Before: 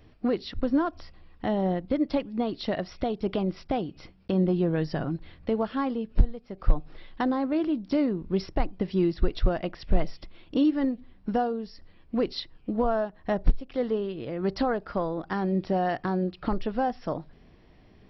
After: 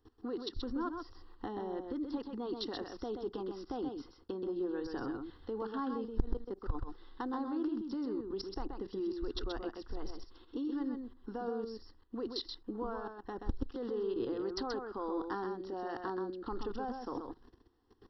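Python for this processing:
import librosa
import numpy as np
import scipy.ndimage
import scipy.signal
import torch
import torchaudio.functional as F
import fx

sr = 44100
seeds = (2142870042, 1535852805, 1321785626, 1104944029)

y = fx.low_shelf(x, sr, hz=110.0, db=-7.5)
y = fx.level_steps(y, sr, step_db=19)
y = fx.fixed_phaser(y, sr, hz=620.0, stages=6)
y = y + 10.0 ** (-5.5 / 20.0) * np.pad(y, (int(129 * sr / 1000.0), 0))[:len(y)]
y = fx.transformer_sat(y, sr, knee_hz=73.0)
y = y * librosa.db_to_amplitude(4.0)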